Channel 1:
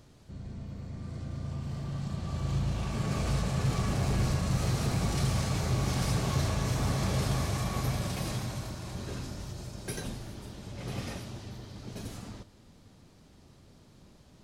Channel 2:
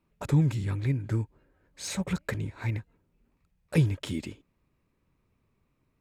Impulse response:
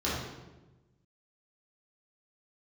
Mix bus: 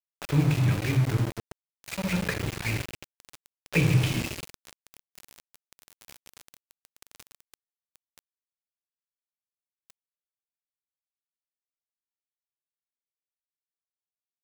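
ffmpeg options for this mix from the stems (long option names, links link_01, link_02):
-filter_complex "[0:a]highshelf=frequency=2400:gain=11.5,volume=-12.5dB,asplit=2[link_01][link_02];[link_02]volume=-16dB[link_03];[1:a]acrossover=split=4800[link_04][link_05];[link_05]acompressor=threshold=-52dB:ratio=4:attack=1:release=60[link_06];[link_04][link_06]amix=inputs=2:normalize=0,volume=-1.5dB,asplit=2[link_07][link_08];[link_08]volume=-12.5dB[link_09];[2:a]atrim=start_sample=2205[link_10];[link_09][link_10]afir=irnorm=-1:irlink=0[link_11];[link_03]aecho=0:1:77:1[link_12];[link_01][link_07][link_11][link_12]amix=inputs=4:normalize=0,equalizer=frequency=2500:width=2.3:gain=14.5,aeval=exprs='val(0)*gte(abs(val(0)),0.0398)':channel_layout=same"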